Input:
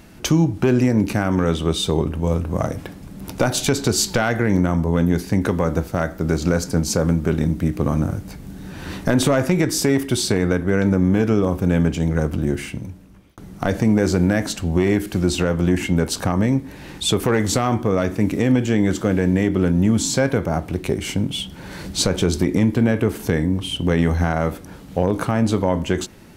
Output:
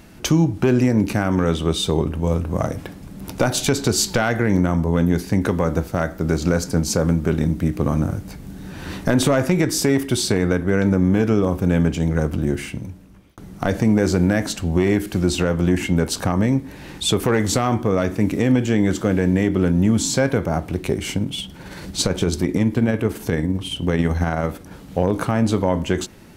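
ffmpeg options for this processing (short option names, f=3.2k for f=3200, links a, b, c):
-filter_complex "[0:a]asettb=1/sr,asplit=3[a][b][c];[a]atrim=end=21.174[d];[b]atrim=start=21.17:end=24.71,asetpts=PTS-STARTPTS,afade=t=in:d=0.004:c=qsin,afade=t=out:st=3.536:d=0.004:c=qsin,tremolo=f=18:d=0.36[e];[c]atrim=start=24.706[f];[d][e]acrossfade=d=0.004:c1=hsin:c2=qsin[g];[g][f]acrossfade=d=0.004:c1=qsin:c2=hsin"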